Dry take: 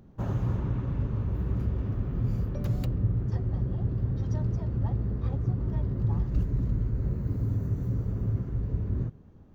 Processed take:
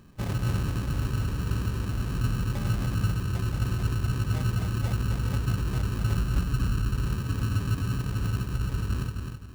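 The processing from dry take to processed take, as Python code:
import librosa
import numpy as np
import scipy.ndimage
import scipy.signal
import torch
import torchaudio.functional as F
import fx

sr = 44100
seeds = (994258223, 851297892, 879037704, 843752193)

p1 = fx.sample_hold(x, sr, seeds[0], rate_hz=1400.0, jitter_pct=0)
y = p1 + fx.echo_feedback(p1, sr, ms=260, feedback_pct=33, wet_db=-5.5, dry=0)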